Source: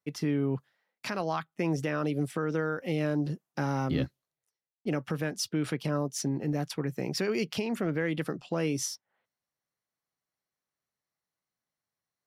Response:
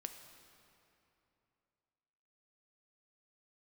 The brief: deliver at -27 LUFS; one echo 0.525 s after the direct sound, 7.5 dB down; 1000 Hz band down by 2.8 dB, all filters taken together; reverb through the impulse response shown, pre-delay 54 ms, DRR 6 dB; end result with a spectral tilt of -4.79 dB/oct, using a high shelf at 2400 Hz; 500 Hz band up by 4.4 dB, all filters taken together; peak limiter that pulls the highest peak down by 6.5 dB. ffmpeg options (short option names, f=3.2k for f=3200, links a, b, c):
-filter_complex "[0:a]equalizer=f=500:t=o:g=6.5,equalizer=f=1k:t=o:g=-8,highshelf=f=2.4k:g=7,alimiter=limit=-20.5dB:level=0:latency=1,aecho=1:1:525:0.422,asplit=2[a][b];[1:a]atrim=start_sample=2205,adelay=54[c];[b][c]afir=irnorm=-1:irlink=0,volume=-2.5dB[d];[a][d]amix=inputs=2:normalize=0,volume=3dB"